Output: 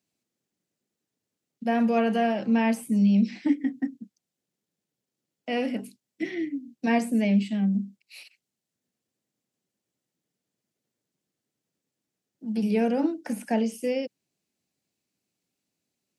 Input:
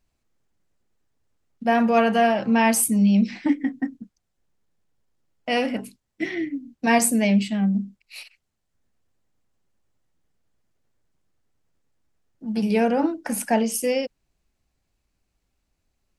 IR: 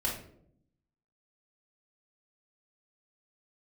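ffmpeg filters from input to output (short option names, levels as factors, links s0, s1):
-filter_complex "[0:a]acrossover=split=2700[s0][s1];[s1]acompressor=threshold=0.00631:ratio=4:attack=1:release=60[s2];[s0][s2]amix=inputs=2:normalize=0,equalizer=f=1100:w=0.66:g=-10,acrossover=split=140|690|3500[s3][s4][s5][s6];[s3]acrusher=bits=2:mix=0:aa=0.5[s7];[s7][s4][s5][s6]amix=inputs=4:normalize=0"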